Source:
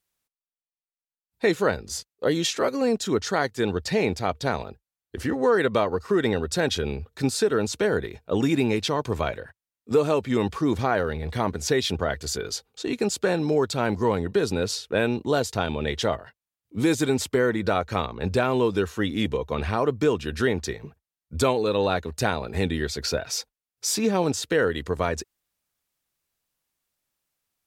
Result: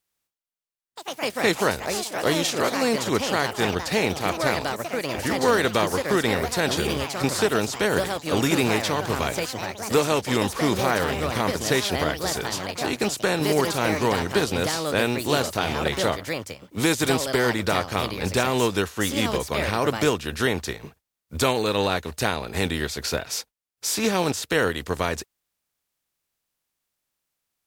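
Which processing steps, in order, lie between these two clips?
compressing power law on the bin magnitudes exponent 0.66
delay with pitch and tempo change per echo 85 ms, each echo +4 semitones, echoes 3, each echo −6 dB

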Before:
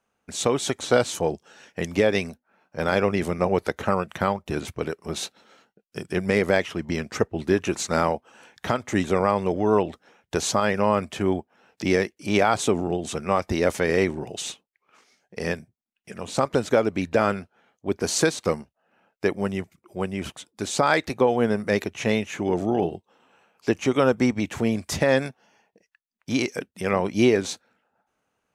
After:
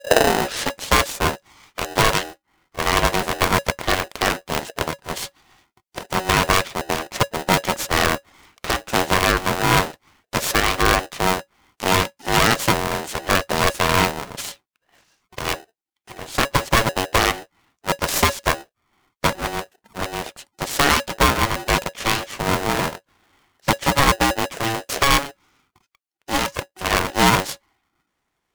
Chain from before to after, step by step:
turntable start at the beginning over 0.91 s
harmonic generator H 6 −11 dB, 8 −6 dB, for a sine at −5 dBFS
ring modulator with a square carrier 560 Hz

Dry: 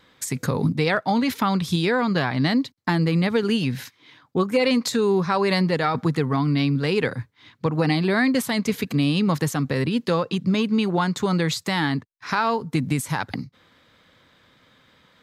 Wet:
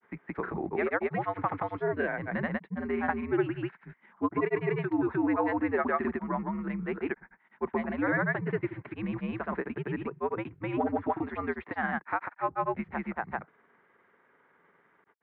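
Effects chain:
single-sideband voice off tune −89 Hz 310–2,200 Hz
gain on a spectral selection 0:01.92–0:02.30, 740–1,500 Hz −9 dB
granular cloud, spray 208 ms, pitch spread up and down by 0 semitones
level −3.5 dB

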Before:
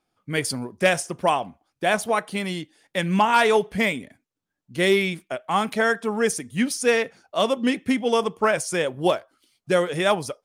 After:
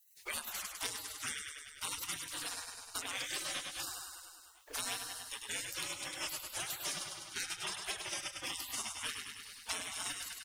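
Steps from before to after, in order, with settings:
repeating echo 101 ms, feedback 49%, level −6 dB
gate on every frequency bin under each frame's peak −30 dB weak
multiband upward and downward compressor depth 100%

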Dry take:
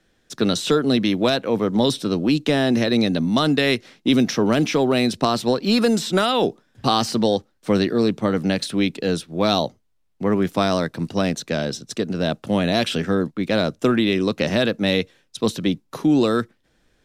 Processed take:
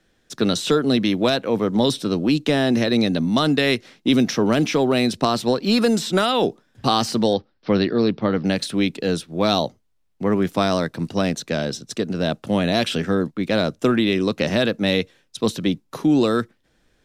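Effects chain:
0:07.33–0:08.45: Butterworth low-pass 5,400 Hz 72 dB per octave

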